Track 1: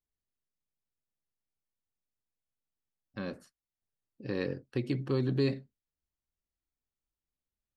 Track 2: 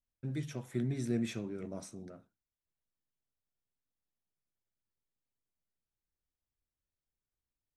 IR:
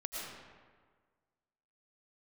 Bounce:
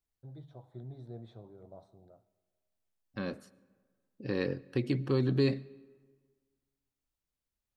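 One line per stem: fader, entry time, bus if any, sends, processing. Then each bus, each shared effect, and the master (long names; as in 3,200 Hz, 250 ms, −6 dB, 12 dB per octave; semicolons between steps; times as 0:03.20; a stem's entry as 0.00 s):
+1.0 dB, 0.00 s, send −23.5 dB, no processing
−6.5 dB, 0.00 s, send −20.5 dB, drawn EQ curve 110 Hz 0 dB, 230 Hz −13 dB, 770 Hz +5 dB, 2,600 Hz −28 dB, 3,800 Hz −5 dB, 5,800 Hz −29 dB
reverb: on, RT60 1.6 s, pre-delay 70 ms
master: no processing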